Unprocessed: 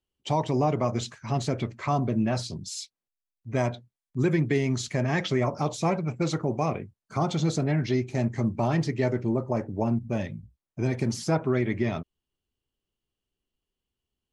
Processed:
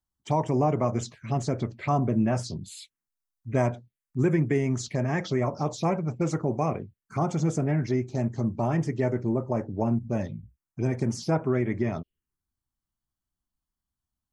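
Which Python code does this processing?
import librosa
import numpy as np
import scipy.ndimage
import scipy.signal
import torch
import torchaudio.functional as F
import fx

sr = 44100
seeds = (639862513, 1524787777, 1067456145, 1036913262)

y = fx.rider(x, sr, range_db=3, speed_s=2.0)
y = fx.env_phaser(y, sr, low_hz=450.0, high_hz=4100.0, full_db=-22.5)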